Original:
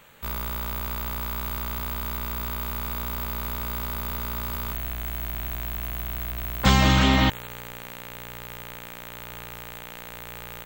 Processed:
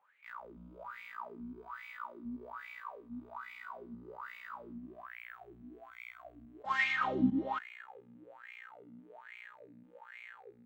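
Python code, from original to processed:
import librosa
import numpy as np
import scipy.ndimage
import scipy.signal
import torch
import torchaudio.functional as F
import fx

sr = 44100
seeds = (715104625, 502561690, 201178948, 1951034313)

y = fx.reverse_delay(x, sr, ms=281, wet_db=-3.0)
y = fx.wah_lfo(y, sr, hz=1.2, low_hz=230.0, high_hz=2300.0, q=11.0)
y = fx.noise_reduce_blind(y, sr, reduce_db=7)
y = fx.peak_eq(y, sr, hz=10000.0, db=4.0, octaves=1.9, at=(5.29, 6.96))
y = fx.attack_slew(y, sr, db_per_s=280.0)
y = F.gain(torch.from_numpy(y), 2.0).numpy()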